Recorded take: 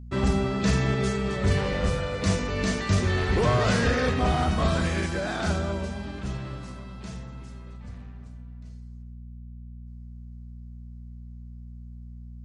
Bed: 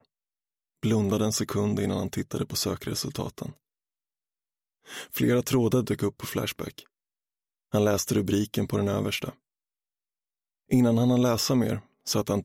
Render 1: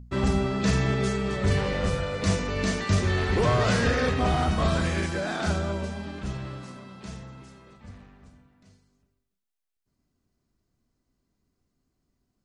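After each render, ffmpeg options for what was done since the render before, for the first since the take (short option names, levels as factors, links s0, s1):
-af "bandreject=f=60:t=h:w=4,bandreject=f=120:t=h:w=4,bandreject=f=180:t=h:w=4,bandreject=f=240:t=h:w=4"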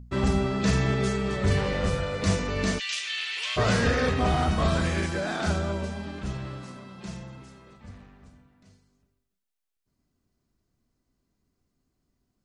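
-filter_complex "[0:a]asplit=3[s0][s1][s2];[s0]afade=t=out:st=2.78:d=0.02[s3];[s1]highpass=f=2800:t=q:w=3,afade=t=in:st=2.78:d=0.02,afade=t=out:st=3.56:d=0.02[s4];[s2]afade=t=in:st=3.56:d=0.02[s5];[s3][s4][s5]amix=inputs=3:normalize=0,asettb=1/sr,asplit=3[s6][s7][s8];[s6]atrim=end=6.984[s9];[s7]atrim=start=6.98:end=7.38,asetpts=PTS-STARTPTS,afade=t=in:d=0.004:c=qsin,afade=t=out:st=0.396:d=0.004:c=qsin,aecho=1:1:5.7:0.53,atrim=end_sample=17640[s10];[s8]atrim=start=7.376[s11];[s9][s10]acrossfade=d=0.004:c1=hsin:c2=qsin[s12];[s12][s11]acrossfade=d=0.004:c1=qsin:c2=hsin"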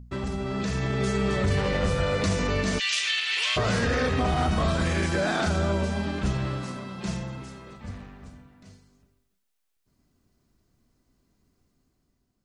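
-af "alimiter=limit=0.0708:level=0:latency=1:release=132,dynaudnorm=f=180:g=9:m=2.24"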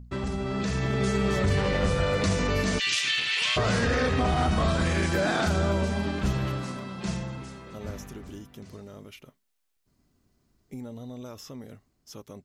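-filter_complex "[1:a]volume=0.126[s0];[0:a][s0]amix=inputs=2:normalize=0"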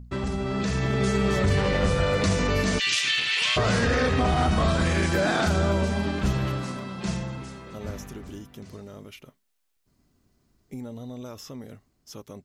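-af "volume=1.26"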